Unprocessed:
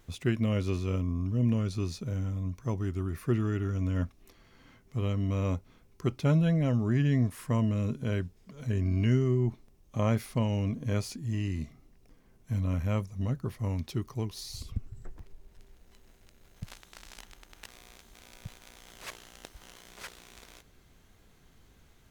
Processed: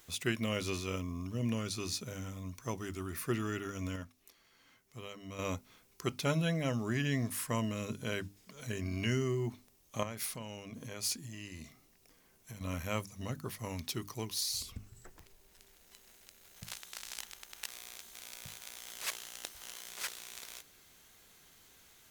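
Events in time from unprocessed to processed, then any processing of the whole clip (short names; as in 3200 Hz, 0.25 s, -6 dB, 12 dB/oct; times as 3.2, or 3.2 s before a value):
3.96–5.39 gain -7.5 dB
10.03–12.61 compressor 12:1, threshold -33 dBFS
whole clip: tilt +3 dB/oct; notches 50/100/150/200/250/300 Hz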